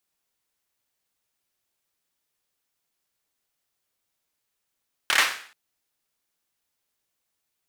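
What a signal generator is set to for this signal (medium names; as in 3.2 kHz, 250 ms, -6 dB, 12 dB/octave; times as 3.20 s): hand clap length 0.43 s, bursts 4, apart 27 ms, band 1.8 kHz, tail 0.49 s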